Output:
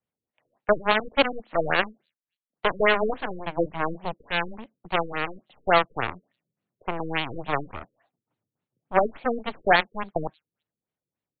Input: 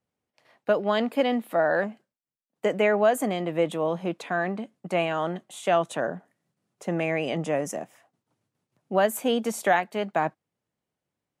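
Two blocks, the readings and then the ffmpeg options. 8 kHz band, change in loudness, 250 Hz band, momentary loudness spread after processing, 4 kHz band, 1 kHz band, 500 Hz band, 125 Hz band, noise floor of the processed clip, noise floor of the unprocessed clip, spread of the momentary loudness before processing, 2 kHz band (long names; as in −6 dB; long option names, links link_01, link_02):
below −40 dB, +0.5 dB, −4.0 dB, 12 LU, +5.0 dB, +2.0 dB, −2.0 dB, −2.0 dB, below −85 dBFS, below −85 dBFS, 9 LU, +4.0 dB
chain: -filter_complex "[0:a]aeval=exprs='0.376*(cos(1*acos(clip(val(0)/0.376,-1,1)))-cos(1*PI/2))+0.0168*(cos(5*acos(clip(val(0)/0.376,-1,1)))-cos(5*PI/2))+0.0841*(cos(7*acos(clip(val(0)/0.376,-1,1)))-cos(7*PI/2))+0.0376*(cos(8*acos(clip(val(0)/0.376,-1,1)))-cos(8*PI/2))':channel_layout=same,acrossover=split=340|4000[link_01][link_02][link_03];[link_01]asoftclip=type=tanh:threshold=-30dB[link_04];[link_02]highshelf=frequency=2600:gain=9[link_05];[link_03]aecho=1:1:178|356|534:0.0891|0.0312|0.0109[link_06];[link_04][link_05][link_06]amix=inputs=3:normalize=0,afftfilt=real='re*lt(b*sr/1024,510*pow(4600/510,0.5+0.5*sin(2*PI*3.5*pts/sr)))':imag='im*lt(b*sr/1024,510*pow(4600/510,0.5+0.5*sin(2*PI*3.5*pts/sr)))':win_size=1024:overlap=0.75,volume=2.5dB"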